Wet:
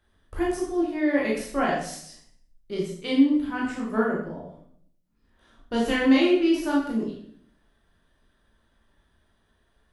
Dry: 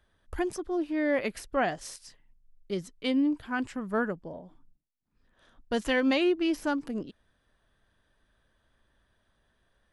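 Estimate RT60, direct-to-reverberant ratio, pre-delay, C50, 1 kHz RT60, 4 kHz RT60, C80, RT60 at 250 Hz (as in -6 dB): 0.60 s, -4.5 dB, 15 ms, 2.5 dB, 0.55 s, 0.55 s, 6.0 dB, 0.80 s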